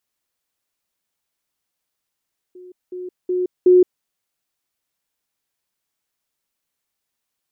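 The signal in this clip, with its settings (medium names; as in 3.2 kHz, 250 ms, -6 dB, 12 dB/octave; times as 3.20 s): level ladder 363 Hz -37.5 dBFS, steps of 10 dB, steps 4, 0.17 s 0.20 s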